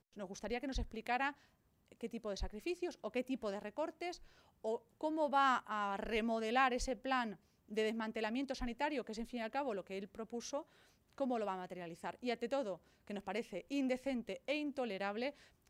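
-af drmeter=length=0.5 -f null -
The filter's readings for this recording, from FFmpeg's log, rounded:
Channel 1: DR: 11.8
Overall DR: 11.8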